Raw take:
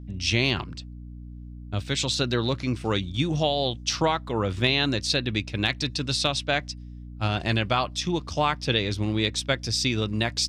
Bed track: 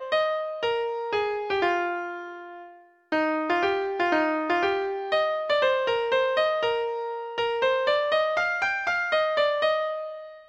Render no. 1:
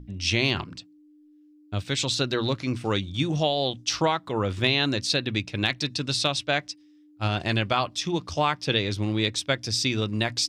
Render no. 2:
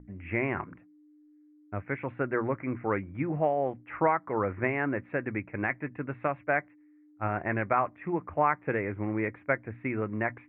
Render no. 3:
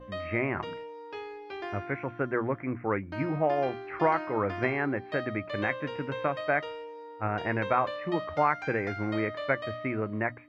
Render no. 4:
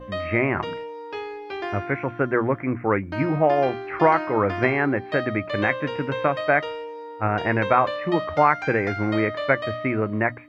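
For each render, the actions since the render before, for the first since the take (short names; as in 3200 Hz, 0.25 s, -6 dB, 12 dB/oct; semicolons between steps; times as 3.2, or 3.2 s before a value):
notches 60/120/180/240 Hz
steep low-pass 2200 Hz 72 dB/oct; low shelf 210 Hz -10.5 dB
add bed track -14 dB
gain +7.5 dB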